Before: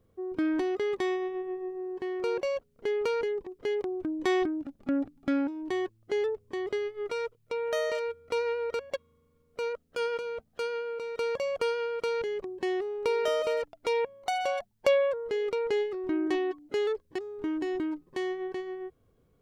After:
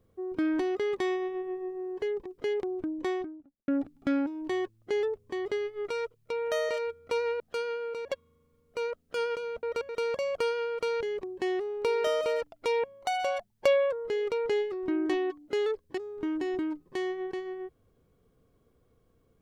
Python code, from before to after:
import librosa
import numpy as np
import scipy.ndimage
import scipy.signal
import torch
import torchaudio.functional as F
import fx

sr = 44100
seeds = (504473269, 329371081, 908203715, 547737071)

y = fx.studio_fade_out(x, sr, start_s=3.87, length_s=1.02)
y = fx.edit(y, sr, fx.cut(start_s=2.02, length_s=1.21),
    fx.swap(start_s=8.61, length_s=0.26, other_s=10.45, other_length_s=0.65), tone=tone)